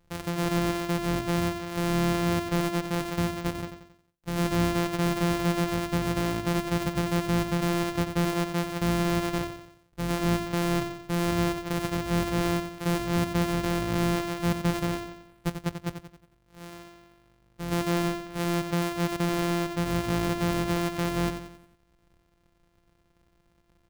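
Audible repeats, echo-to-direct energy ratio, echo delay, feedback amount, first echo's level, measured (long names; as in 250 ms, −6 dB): 4, −7.5 dB, 90 ms, 46%, −8.5 dB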